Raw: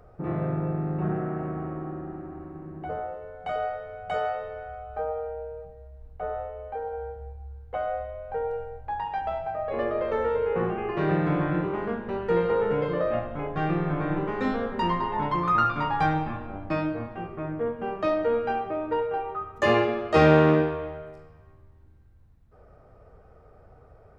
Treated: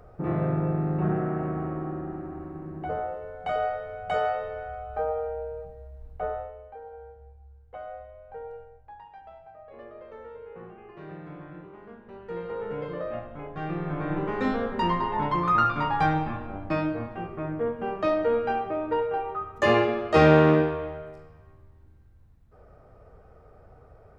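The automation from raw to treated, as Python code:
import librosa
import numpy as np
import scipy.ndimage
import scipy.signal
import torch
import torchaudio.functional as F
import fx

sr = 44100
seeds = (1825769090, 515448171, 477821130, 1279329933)

y = fx.gain(x, sr, db=fx.line((6.24, 2.0), (6.75, -10.0), (8.55, -10.0), (9.12, -17.5), (11.8, -17.5), (12.83, -7.0), (13.57, -7.0), (14.34, 0.5)))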